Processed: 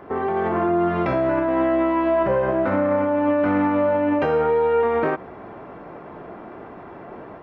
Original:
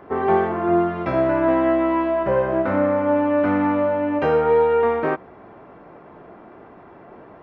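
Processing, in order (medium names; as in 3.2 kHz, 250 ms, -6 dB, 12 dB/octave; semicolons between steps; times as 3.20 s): peak limiter -18.5 dBFS, peak gain reduction 11.5 dB; level rider gain up to 3.5 dB; trim +2 dB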